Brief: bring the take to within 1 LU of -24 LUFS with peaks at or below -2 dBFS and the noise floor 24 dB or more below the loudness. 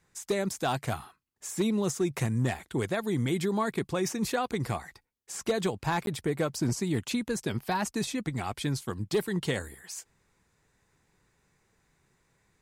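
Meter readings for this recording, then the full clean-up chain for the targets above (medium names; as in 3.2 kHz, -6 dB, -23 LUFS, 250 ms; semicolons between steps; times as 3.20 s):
clipped samples 0.3%; clipping level -20.0 dBFS; dropouts 1; longest dropout 12 ms; loudness -31.0 LUFS; peak level -20.0 dBFS; loudness target -24.0 LUFS
-> clip repair -20 dBFS; interpolate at 6.06 s, 12 ms; trim +7 dB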